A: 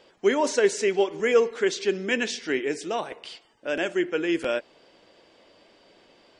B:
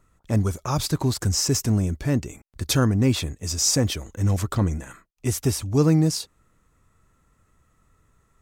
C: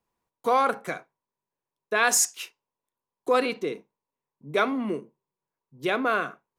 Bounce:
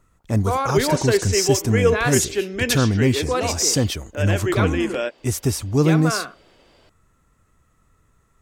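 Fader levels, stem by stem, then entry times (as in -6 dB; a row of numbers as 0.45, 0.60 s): +1.5, +1.5, -1.0 dB; 0.50, 0.00, 0.00 s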